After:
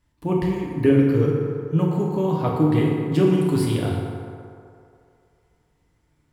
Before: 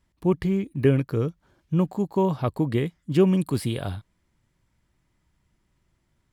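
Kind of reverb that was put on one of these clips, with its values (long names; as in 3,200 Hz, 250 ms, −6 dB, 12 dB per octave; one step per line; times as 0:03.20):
feedback delay network reverb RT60 2.5 s, low-frequency decay 0.7×, high-frequency decay 0.45×, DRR −3.5 dB
level −1 dB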